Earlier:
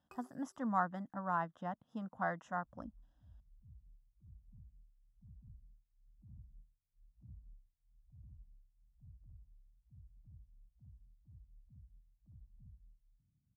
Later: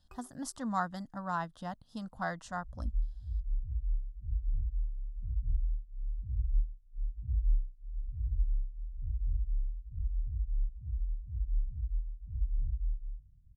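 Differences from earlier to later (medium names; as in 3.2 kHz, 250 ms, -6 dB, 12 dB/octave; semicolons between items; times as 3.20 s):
speech: remove boxcar filter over 10 samples; second sound: add peaking EQ 63 Hz +5 dB 2.3 oct; master: remove high-pass 180 Hz 12 dB/octave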